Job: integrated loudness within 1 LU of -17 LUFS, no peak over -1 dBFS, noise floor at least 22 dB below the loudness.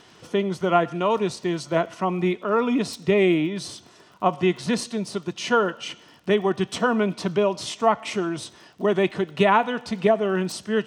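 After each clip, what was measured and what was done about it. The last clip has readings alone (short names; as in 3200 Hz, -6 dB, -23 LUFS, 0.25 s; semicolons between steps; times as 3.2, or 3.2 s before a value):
ticks 28/s; loudness -23.5 LUFS; peak -5.5 dBFS; loudness target -17.0 LUFS
-> de-click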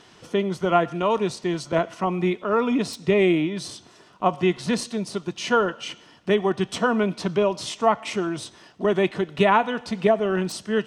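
ticks 0.18/s; loudness -23.5 LUFS; peak -5.5 dBFS; loudness target -17.0 LUFS
-> gain +6.5 dB; limiter -1 dBFS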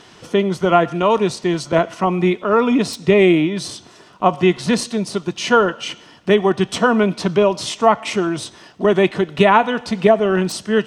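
loudness -17.0 LUFS; peak -1.0 dBFS; noise floor -46 dBFS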